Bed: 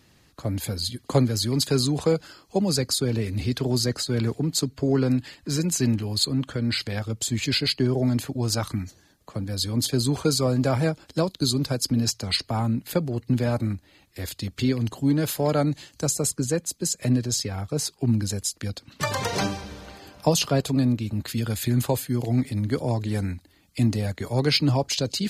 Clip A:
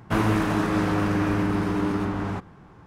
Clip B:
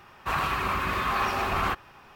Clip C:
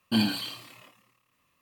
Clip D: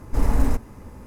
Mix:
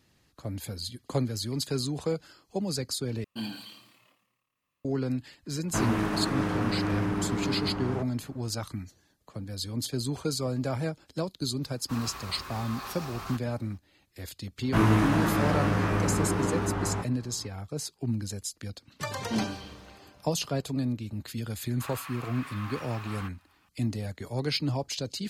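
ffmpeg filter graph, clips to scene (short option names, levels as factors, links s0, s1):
-filter_complex "[3:a]asplit=2[s0][s1];[1:a]asplit=2[s2][s3];[2:a]asplit=2[s4][s5];[0:a]volume=0.398[s6];[s0]aecho=1:1:90|180|270|360|450:0.106|0.0604|0.0344|0.0196|0.0112[s7];[s4]highshelf=f=3600:t=q:w=1.5:g=9[s8];[s3]asplit=2[s9][s10];[s10]adelay=18,volume=0.794[s11];[s9][s11]amix=inputs=2:normalize=0[s12];[s1]lowpass=f=1200:p=1[s13];[s5]highpass=970[s14];[s6]asplit=2[s15][s16];[s15]atrim=end=3.244[s17];[s7]atrim=end=1.61,asetpts=PTS-STARTPTS,volume=0.266[s18];[s16]atrim=start=4.846[s19];[s2]atrim=end=2.86,asetpts=PTS-STARTPTS,volume=0.531,afade=t=in:d=0.004:c=hsin,afade=t=out:st=2.856:d=0.004:c=hsin,adelay=5630[s20];[s8]atrim=end=2.15,asetpts=PTS-STARTPTS,volume=0.211,afade=t=in:d=0.004:c=hsin,afade=t=out:st=2.146:d=0.004:c=hsin,adelay=11630[s21];[s12]atrim=end=2.86,asetpts=PTS-STARTPTS,volume=0.668,afade=t=in:d=0.004:c=hsin,afade=t=out:st=2.856:d=0.004:c=hsin,adelay=14620[s22];[s13]atrim=end=1.61,asetpts=PTS-STARTPTS,volume=0.596,afade=t=in:d=0.004:c=hsin,afade=t=out:st=1.606:d=0.004:c=hsin,adelay=19190[s23];[s14]atrim=end=2.15,asetpts=PTS-STARTPTS,volume=0.224,afade=t=in:d=0.004:c=hsin,afade=t=out:st=2.146:d=0.004:c=hsin,adelay=21540[s24];[s17][s18]acrossfade=d=0.004:c1=hsin:c2=hsin[s25];[s25][s19]acrossfade=d=0.004:c1=hsin:c2=hsin[s26];[s26][s20][s21][s22][s23][s24]amix=inputs=6:normalize=0"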